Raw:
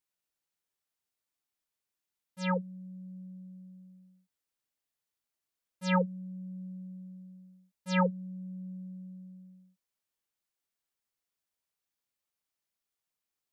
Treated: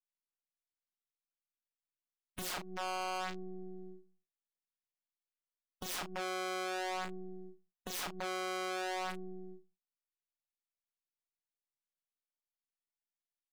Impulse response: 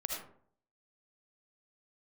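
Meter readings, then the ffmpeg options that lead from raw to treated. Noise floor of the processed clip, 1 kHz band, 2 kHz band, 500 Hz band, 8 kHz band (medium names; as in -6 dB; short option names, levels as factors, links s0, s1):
under -85 dBFS, 0.0 dB, -0.5 dB, -2.5 dB, no reading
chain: -filter_complex "[0:a]acrossover=split=1500[s0][s1];[s0]alimiter=level_in=1.68:limit=0.0631:level=0:latency=1:release=172,volume=0.596[s2];[s1]acontrast=78[s3];[s2][s3]amix=inputs=2:normalize=0,aeval=exprs='max(val(0),0)':c=same,agate=range=0.251:threshold=0.00141:ratio=16:detection=peak,aemphasis=mode=reproduction:type=50kf,acompressor=threshold=0.00316:ratio=2,aeval=exprs='(mod(188*val(0)+1,2)-1)/188':c=same,afftdn=nr=19:nf=-63,lowshelf=f=300:g=-7.5,asplit=2[s4][s5];[s5]adelay=35,volume=0.398[s6];[s4][s6]amix=inputs=2:normalize=0,volume=5.62"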